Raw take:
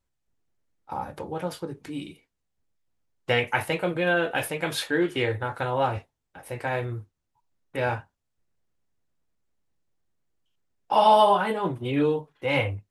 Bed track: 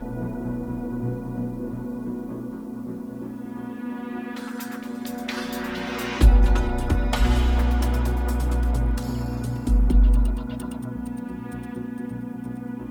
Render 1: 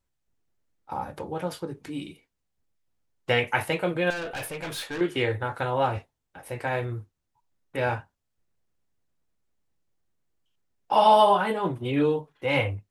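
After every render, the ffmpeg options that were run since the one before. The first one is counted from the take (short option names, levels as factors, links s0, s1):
-filter_complex "[0:a]asettb=1/sr,asplit=3[s0][s1][s2];[s0]atrim=end=4.104[s3];[s1]atrim=start=4.1:end=5.01,asetpts=PTS-STARTPTS,afade=t=in:d=0.004:c=qsin,afade=t=out:st=0.906:d=0.004:c=qsin,aeval=exprs='(tanh(31.6*val(0)+0.15)-tanh(0.15))/31.6':c=same[s4];[s2]atrim=start=5.006[s5];[s3][s4]acrossfade=d=0.004:c1=hsin:c2=qsin[s6];[s6][s5]acrossfade=d=0.004:c1=qsin:c2=hsin"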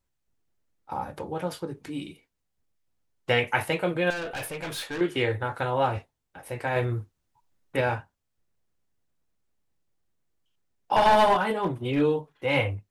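-filter_complex "[0:a]asettb=1/sr,asplit=3[s0][s1][s2];[s0]atrim=end=10.964[s3];[s1]atrim=start=10.96:end=12.01,asetpts=PTS-STARTPTS,afade=t=in:d=0.004:c=qsin,afade=t=out:st=1.046:d=0.004:c=qsin,aeval=exprs='clip(val(0),-1,0.106)':c=same[s4];[s2]atrim=start=12.006[s5];[s3][s4]acrossfade=d=0.004:c1=hsin:c2=qsin[s6];[s6][s5]acrossfade=d=0.004:c1=qsin:c2=hsin,asplit=3[s7][s8][s9];[s7]atrim=end=6.762[s10];[s8]atrim=start=6.758:end=7.812,asetpts=PTS-STARTPTS,volume=1.58[s11];[s9]atrim=start=7.808[s12];[s10][s11]acrossfade=d=0.004:c1=hsin:c2=hsin[s13];[s13][s12]acrossfade=d=0.004:c1=hsin:c2=hsin"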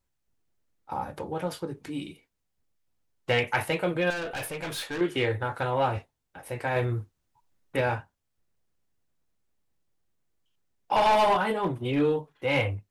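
-af "asoftclip=type=tanh:threshold=0.188"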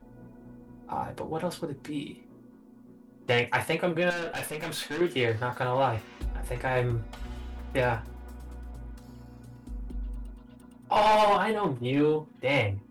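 -filter_complex "[1:a]volume=0.106[s0];[0:a][s0]amix=inputs=2:normalize=0"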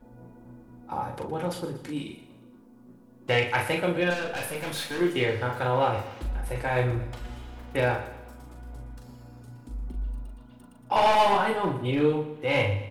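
-filter_complex "[0:a]asplit=2[s0][s1];[s1]adelay=40,volume=0.562[s2];[s0][s2]amix=inputs=2:normalize=0,aecho=1:1:118|236|354|472:0.224|0.101|0.0453|0.0204"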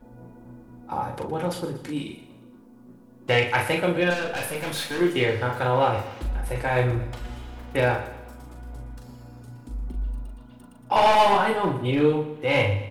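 -af "volume=1.41"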